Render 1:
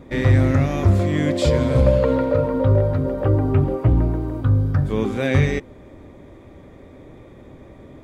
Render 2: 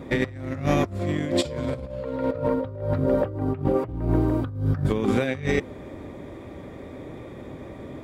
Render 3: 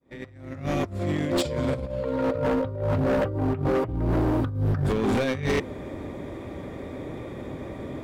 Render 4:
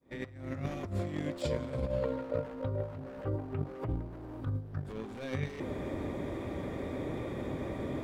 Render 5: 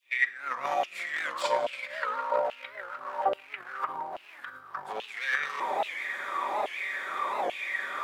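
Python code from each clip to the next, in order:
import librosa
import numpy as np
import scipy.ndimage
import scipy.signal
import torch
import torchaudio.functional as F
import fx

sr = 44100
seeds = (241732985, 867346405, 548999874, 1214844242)

y1 = fx.highpass(x, sr, hz=87.0, slope=6)
y1 = fx.notch(y1, sr, hz=6300.0, q=19.0)
y1 = fx.over_compress(y1, sr, threshold_db=-24.0, ratio=-0.5)
y2 = fx.fade_in_head(y1, sr, length_s=1.53)
y2 = np.clip(10.0 ** (23.0 / 20.0) * y2, -1.0, 1.0) / 10.0 ** (23.0 / 20.0)
y2 = y2 * 10.0 ** (3.0 / 20.0)
y3 = fx.over_compress(y2, sr, threshold_db=-29.0, ratio=-0.5)
y3 = y3 * 10.0 ** (-5.5 / 20.0)
y4 = fx.room_shoebox(y3, sr, seeds[0], volume_m3=3400.0, walls='furnished', distance_m=1.1)
y4 = fx.filter_lfo_highpass(y4, sr, shape='saw_down', hz=1.2, low_hz=700.0, high_hz=2900.0, q=7.3)
y4 = fx.record_warp(y4, sr, rpm=78.0, depth_cents=160.0)
y4 = y4 * 10.0 ** (7.5 / 20.0)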